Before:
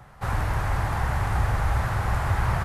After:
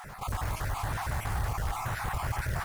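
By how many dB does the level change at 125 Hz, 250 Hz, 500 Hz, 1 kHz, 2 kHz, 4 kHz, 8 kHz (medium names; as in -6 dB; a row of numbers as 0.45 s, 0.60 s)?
-8.5 dB, -8.0 dB, -7.5 dB, -6.0 dB, -6.0 dB, -2.5 dB, +1.0 dB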